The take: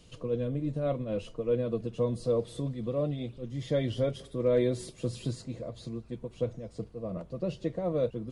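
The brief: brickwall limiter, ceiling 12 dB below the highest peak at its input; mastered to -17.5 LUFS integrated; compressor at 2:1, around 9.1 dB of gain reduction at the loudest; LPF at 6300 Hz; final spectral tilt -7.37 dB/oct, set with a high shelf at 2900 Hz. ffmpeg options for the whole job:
-af "lowpass=6.3k,highshelf=f=2.9k:g=-4,acompressor=threshold=-39dB:ratio=2,volume=28dB,alimiter=limit=-8dB:level=0:latency=1"

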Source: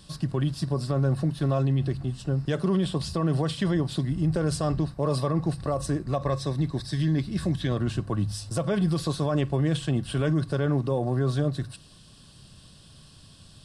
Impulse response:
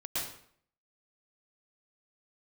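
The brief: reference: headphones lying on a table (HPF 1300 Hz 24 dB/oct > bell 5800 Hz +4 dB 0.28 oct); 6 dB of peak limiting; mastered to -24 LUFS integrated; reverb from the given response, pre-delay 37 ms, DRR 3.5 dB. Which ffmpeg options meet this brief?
-filter_complex "[0:a]alimiter=limit=-22dB:level=0:latency=1,asplit=2[a][b];[1:a]atrim=start_sample=2205,adelay=37[c];[b][c]afir=irnorm=-1:irlink=0,volume=-7.5dB[d];[a][d]amix=inputs=2:normalize=0,highpass=f=1.3k:w=0.5412,highpass=f=1.3k:w=1.3066,equalizer=f=5.8k:t=o:w=0.28:g=4,volume=17dB"

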